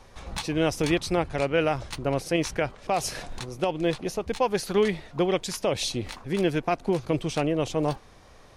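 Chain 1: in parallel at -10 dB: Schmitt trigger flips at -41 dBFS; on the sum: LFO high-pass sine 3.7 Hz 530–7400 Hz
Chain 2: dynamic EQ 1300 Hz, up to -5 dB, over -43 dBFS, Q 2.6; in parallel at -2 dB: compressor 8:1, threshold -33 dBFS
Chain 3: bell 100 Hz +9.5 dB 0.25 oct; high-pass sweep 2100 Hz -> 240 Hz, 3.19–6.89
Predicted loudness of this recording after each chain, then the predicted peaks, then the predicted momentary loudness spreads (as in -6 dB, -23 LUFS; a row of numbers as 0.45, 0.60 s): -27.0, -25.5, -26.5 LUFS; -7.5, -10.5, -8.5 dBFS; 9, 6, 12 LU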